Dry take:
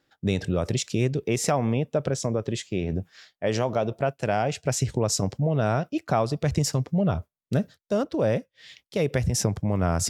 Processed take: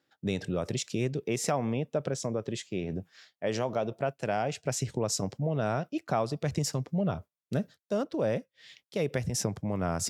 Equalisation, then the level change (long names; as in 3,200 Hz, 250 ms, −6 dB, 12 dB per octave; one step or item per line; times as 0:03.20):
high-pass filter 120 Hz
−5.0 dB